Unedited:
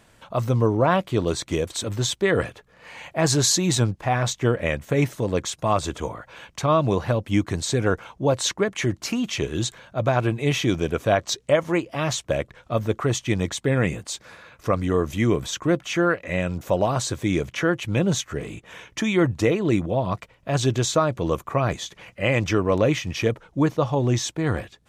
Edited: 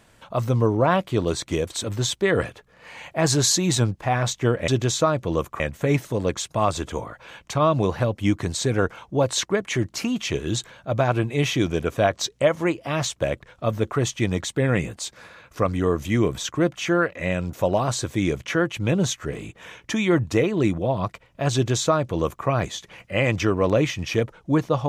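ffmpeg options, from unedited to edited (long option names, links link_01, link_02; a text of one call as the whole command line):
ffmpeg -i in.wav -filter_complex "[0:a]asplit=3[link_01][link_02][link_03];[link_01]atrim=end=4.682[link_04];[link_02]atrim=start=20.618:end=21.542[link_05];[link_03]atrim=start=4.678[link_06];[link_04][link_05]acrossfade=duration=0.004:curve1=hsin:curve2=hsin[link_07];[link_07][link_06]acrossfade=duration=0.004:curve1=hsin:curve2=hsin" out.wav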